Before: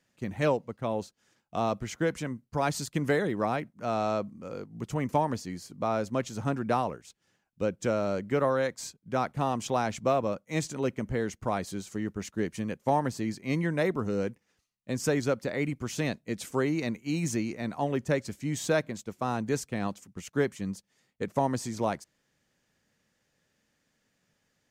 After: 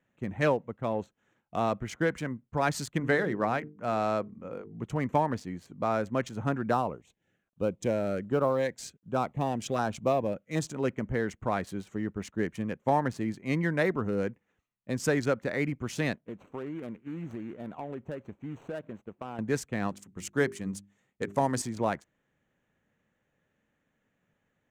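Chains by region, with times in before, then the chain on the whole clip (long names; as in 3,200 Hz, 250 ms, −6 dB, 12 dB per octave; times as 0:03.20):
0:02.98–0:04.82: low-pass filter 7,700 Hz + mains-hum notches 50/100/150/200/250/300/350/400/450 Hz
0:06.71–0:10.70: log-companded quantiser 8 bits + auto-filter notch saw down 1.3 Hz 830–2,300 Hz
0:16.14–0:19.39: running median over 25 samples + low-shelf EQ 260 Hz −7 dB + downward compressor 4 to 1, threshold −34 dBFS
0:19.90–0:21.62: parametric band 9,100 Hz +9 dB 1.5 octaves + mains-hum notches 50/100/150/200/250/300/350/400 Hz
whole clip: adaptive Wiener filter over 9 samples; dynamic equaliser 1,700 Hz, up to +5 dB, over −46 dBFS, Q 2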